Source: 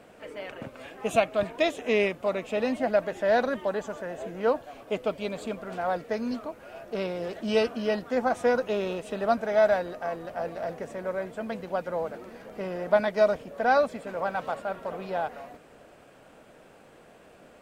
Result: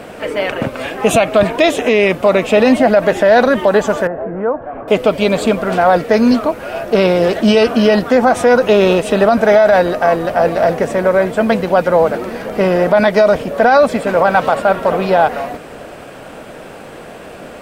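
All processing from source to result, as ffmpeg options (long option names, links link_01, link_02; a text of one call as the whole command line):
ffmpeg -i in.wav -filter_complex "[0:a]asettb=1/sr,asplit=3[link_01][link_02][link_03];[link_01]atrim=end=4.074[link_04];[link_02]atrim=start=4.07:end=4.88,asetpts=PTS-STARTPTS,afade=type=in:duration=0.004:curve=qsin,afade=type=out:start_time=0.806:duration=0.004:curve=qsin,lowpass=frequency=1600:width=0.5412,lowpass=frequency=1600:width=1.3066,acompressor=threshold=-44dB:ratio=2:attack=3.2:release=140:knee=1:detection=peak[link_05];[link_03]atrim=start=4.876[link_06];[link_04][link_05]acrossfade=duration=0.004:curve1=hsin:curve2=qsin[link_07];[link_07][link_06]acrossfade=duration=0.004:curve1=qsin:curve2=hsin,equalizer=frequency=6900:width=3.9:gain=-2.5,alimiter=level_in=21.5dB:limit=-1dB:release=50:level=0:latency=1,volume=-1dB" out.wav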